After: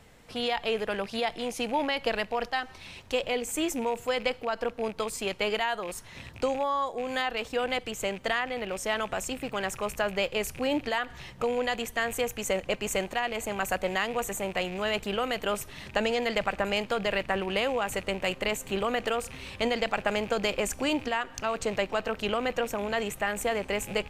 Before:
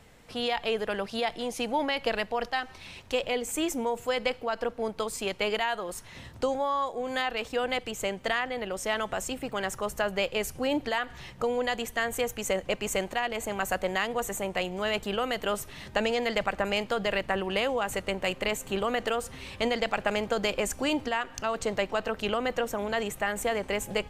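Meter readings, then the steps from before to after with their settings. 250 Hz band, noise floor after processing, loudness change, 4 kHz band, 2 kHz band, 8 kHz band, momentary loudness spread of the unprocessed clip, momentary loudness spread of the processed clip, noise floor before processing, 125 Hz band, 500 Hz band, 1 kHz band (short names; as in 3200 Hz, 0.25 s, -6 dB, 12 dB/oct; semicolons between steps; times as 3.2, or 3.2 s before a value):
0.0 dB, -48 dBFS, 0.0 dB, 0.0 dB, 0.0 dB, 0.0 dB, 5 LU, 4 LU, -48 dBFS, 0.0 dB, 0.0 dB, 0.0 dB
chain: rattling part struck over -44 dBFS, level -32 dBFS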